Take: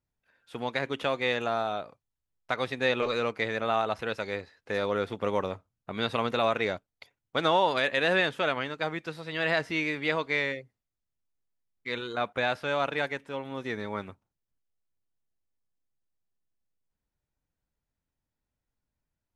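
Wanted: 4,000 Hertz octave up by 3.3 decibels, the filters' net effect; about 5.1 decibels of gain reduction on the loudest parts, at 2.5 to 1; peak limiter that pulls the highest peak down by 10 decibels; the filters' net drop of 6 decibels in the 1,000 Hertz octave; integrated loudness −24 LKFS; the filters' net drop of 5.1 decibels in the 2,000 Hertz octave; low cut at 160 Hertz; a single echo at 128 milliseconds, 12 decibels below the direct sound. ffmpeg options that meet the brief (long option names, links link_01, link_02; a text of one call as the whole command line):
ffmpeg -i in.wav -af "highpass=160,equalizer=frequency=1000:width_type=o:gain=-7,equalizer=frequency=2000:width_type=o:gain=-6,equalizer=frequency=4000:width_type=o:gain=6,acompressor=threshold=-30dB:ratio=2.5,alimiter=level_in=3dB:limit=-24dB:level=0:latency=1,volume=-3dB,aecho=1:1:128:0.251,volume=14.5dB" out.wav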